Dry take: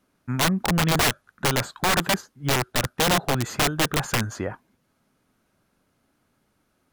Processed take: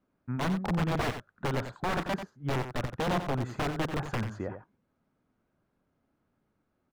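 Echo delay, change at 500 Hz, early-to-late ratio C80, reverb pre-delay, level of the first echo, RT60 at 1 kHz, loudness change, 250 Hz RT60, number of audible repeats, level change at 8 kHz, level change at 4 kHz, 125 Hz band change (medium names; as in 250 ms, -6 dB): 90 ms, -6.5 dB, no reverb, no reverb, -9.0 dB, no reverb, -9.0 dB, no reverb, 1, -21.5 dB, -16.0 dB, -5.5 dB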